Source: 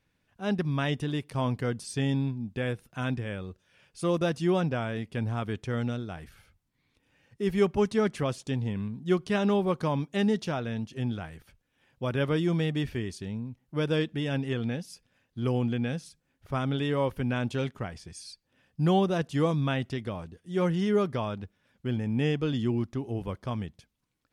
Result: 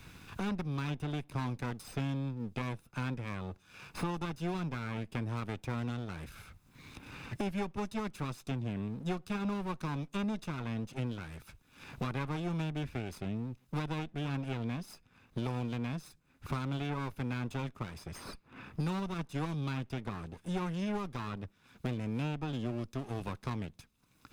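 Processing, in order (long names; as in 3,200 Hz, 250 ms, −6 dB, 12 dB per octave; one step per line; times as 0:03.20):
lower of the sound and its delayed copy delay 0.79 ms
multiband upward and downward compressor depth 100%
level −7.5 dB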